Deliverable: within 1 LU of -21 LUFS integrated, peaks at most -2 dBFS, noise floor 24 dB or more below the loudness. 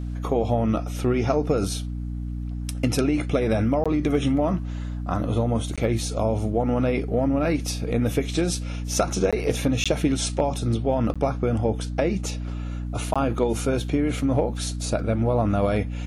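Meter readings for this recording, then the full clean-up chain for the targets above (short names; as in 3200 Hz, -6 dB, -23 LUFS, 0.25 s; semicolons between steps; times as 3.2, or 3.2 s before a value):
dropouts 6; longest dropout 16 ms; hum 60 Hz; harmonics up to 300 Hz; hum level -27 dBFS; loudness -24.5 LUFS; peak -9.5 dBFS; loudness target -21.0 LUFS
-> interpolate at 3.84/5.76/9.31/9.84/11.14/13.14, 16 ms; de-hum 60 Hz, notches 5; gain +3.5 dB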